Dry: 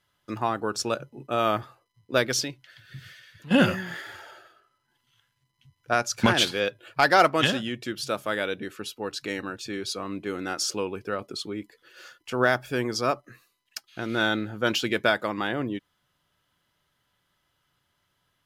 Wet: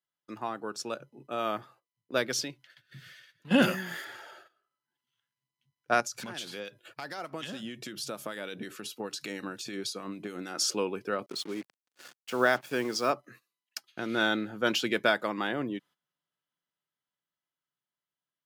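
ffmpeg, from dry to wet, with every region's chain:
-filter_complex "[0:a]asettb=1/sr,asplit=3[a][b][c];[a]atrim=end=3.624[d];[b]atrim=start=3.62:end=4.05,asetpts=PTS-STARTPTS,afade=t=in:d=0.004:c=qsin,afade=t=out:st=0.426:d=0.004:c=qsin,highpass=130,highshelf=f=7.9k:g=12,volume=14.5dB,asoftclip=hard,volume=-14.5dB[e];[c]atrim=start=4.046[f];[d][e]acrossfade=d=0.004:c1=hsin:c2=qsin[g];[g][f]acrossfade=d=0.004:c1=qsin:c2=hsin,asettb=1/sr,asplit=3[h][i][j];[h]atrim=end=6.004[k];[i]atrim=start=6:end=10.55,asetpts=PTS-STARTPTS,afade=t=in:d=0.004:c=qsin,afade=t=out:st=4.546:d=0.004:c=qsin,bass=f=250:g=4,treble=f=4k:g=6,acompressor=threshold=-31dB:ratio=12:attack=3.2:release=140:knee=1:detection=peak,acrossover=split=1700[l][m];[l]aeval=exprs='val(0)*(1-0.5/2+0.5/2*cos(2*PI*6.6*n/s))':c=same[n];[m]aeval=exprs='val(0)*(1-0.5/2-0.5/2*cos(2*PI*6.6*n/s))':c=same[o];[n][o]amix=inputs=2:normalize=0[p];[j]atrim=start=10.546[q];[k][p]acrossfade=d=0.004:c1=hsin:c2=qsin[r];[r][q]acrossfade=d=0.004:c1=qsin:c2=hsin,asettb=1/sr,asplit=3[s][t][u];[s]atrim=end=11.264[v];[t]atrim=start=11.26:end=13.1,asetpts=PTS-STARTPTS,afade=t=in:d=0.004:c=qsin,afade=t=out:st=1.836:d=0.004:c=qsin,highpass=f=160:p=1,agate=range=-33dB:threshold=-55dB:ratio=3:release=100:detection=peak,acrusher=bits=6:mix=0:aa=0.5[w];[u]atrim=start=13.096[x];[v][w]acrossfade=d=0.004:c1=hsin:c2=qsin[y];[y][x]acrossfade=d=0.004:c1=qsin:c2=hsin,highpass=f=140:w=0.5412,highpass=f=140:w=1.3066,agate=range=-14dB:threshold=-51dB:ratio=16:detection=peak,dynaudnorm=f=220:g=21:m=11.5dB,volume=-8.5dB"

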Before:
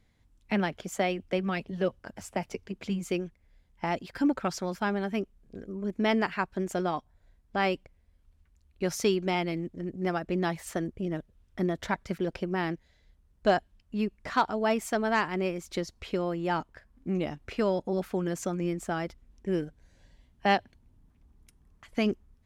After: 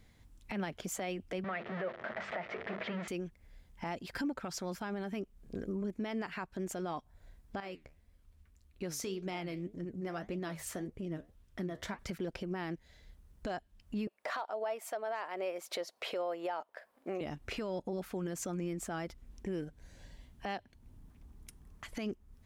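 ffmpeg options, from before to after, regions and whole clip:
-filter_complex "[0:a]asettb=1/sr,asplit=3[a][b][c];[a]atrim=end=1.444[d];[b]atrim=start=1.44:end=3.08,asetpts=PTS-STARTPTS,afade=t=in:d=0.004:c=qsin,afade=t=out:st=1.636:d=0.004:c=qsin,aeval=exprs='val(0)+0.5*0.0251*sgn(val(0))':c=same,highpass=250,equalizer=f=290:t=q:w=4:g=-8,equalizer=f=640:t=q:w=4:g=9,equalizer=f=1.3k:t=q:w=4:g=5,equalizer=f=1.9k:t=q:w=4:g=9,equalizer=f=2.8k:t=q:w=4:g=-4,lowpass=f=3.1k:w=0.5412,lowpass=f=3.1k:w=1.3066,bandreject=f=50:t=h:w=6,bandreject=f=100:t=h:w=6,bandreject=f=150:t=h:w=6,bandreject=f=200:t=h:w=6,bandreject=f=250:t=h:w=6,bandreject=f=300:t=h:w=6,bandreject=f=350:t=h:w=6,bandreject=f=400:t=h:w=6,bandreject=f=450:t=h:w=6,bandreject=f=500:t=h:w=6[e];[c]atrim=start=3.076[f];[d][e]acrossfade=d=0.004:c1=hsin:c2=qsin[g];[g][f]acrossfade=d=0.004:c1=qsin:c2=hsin,asettb=1/sr,asplit=3[h][i][j];[h]atrim=end=7.604[k];[i]atrim=start=7.6:end=11.99,asetpts=PTS-STARTPTS,afade=t=in:d=0.004:c=qsin,afade=t=out:st=4.386:d=0.004:c=qsin,bandreject=f=840:w=15,acompressor=threshold=-47dB:ratio=1.5:attack=3.2:release=140:knee=1:detection=peak,flanger=delay=5.7:depth=9.3:regen=68:speed=1.8:shape=triangular[l];[j]atrim=start=11.986[m];[k][l]acrossfade=d=0.004:c1=hsin:c2=qsin[n];[n][m]acrossfade=d=0.004:c1=qsin:c2=hsin,asettb=1/sr,asplit=3[o][p][q];[o]atrim=end=14.074[r];[p]atrim=start=14.07:end=17.21,asetpts=PTS-STARTPTS,afade=t=in:d=0.004:c=qsin,afade=t=out:st=3.136:d=0.004:c=qsin,highpass=f=600:t=q:w=2.7,equalizer=f=6.7k:w=1.4:g=-5.5[s];[q]atrim=start=17.206[t];[r][s]acrossfade=d=0.004:c1=hsin:c2=qsin[u];[u][t]acrossfade=d=0.004:c1=qsin:c2=hsin,highshelf=f=8.3k:g=5,acompressor=threshold=-39dB:ratio=4,alimiter=level_in=9.5dB:limit=-24dB:level=0:latency=1:release=35,volume=-9.5dB,volume=5dB"

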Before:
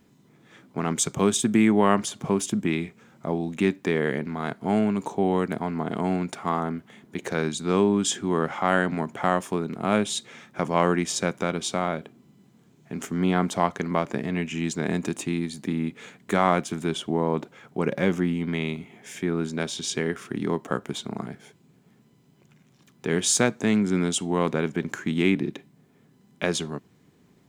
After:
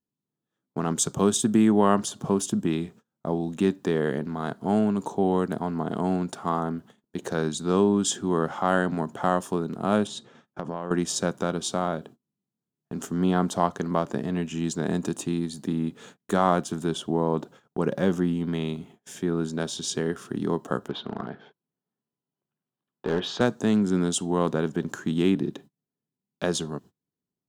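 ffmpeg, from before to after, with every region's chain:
-filter_complex "[0:a]asettb=1/sr,asplit=3[a][b][c];[a]atrim=end=10.074[d];[b]atrim=start=10.07:end=10.91,asetpts=PTS-STARTPTS,afade=t=in:d=0.004:c=qsin,afade=t=out:st=0.836:d=0.004:c=qsin,aemphasis=mode=reproduction:type=75fm,acompressor=threshold=-26dB:ratio=12:attack=3.2:release=140:knee=1:detection=peak[e];[c]atrim=start=10.906[f];[d][e]acrossfade=d=0.004:c1=hsin:c2=qsin[g];[g][f]acrossfade=d=0.004:c1=qsin:c2=hsin,asettb=1/sr,asplit=3[h][i][j];[h]atrim=end=20.884[k];[i]atrim=start=20.88:end=23.41,asetpts=PTS-STARTPTS,afade=t=in:d=0.004:c=qsin,afade=t=out:st=2.526:d=0.004:c=qsin,lowpass=f=3.7k:w=0.5412,lowpass=f=3.7k:w=1.3066,aeval=exprs='clip(val(0),-1,0.0447)':c=same,asplit=2[l][m];[m]highpass=f=720:p=1,volume=13dB,asoftclip=type=tanh:threshold=-10.5dB[n];[l][n]amix=inputs=2:normalize=0,lowpass=f=2.3k:p=1,volume=-6dB[o];[j]atrim=start=23.406[p];[k][o]acrossfade=d=0.004:c1=hsin:c2=qsin[q];[q][p]acrossfade=d=0.004:c1=qsin:c2=hsin,agate=range=-31dB:threshold=-45dB:ratio=16:detection=peak,equalizer=f=2.2k:w=3.3:g=-15"

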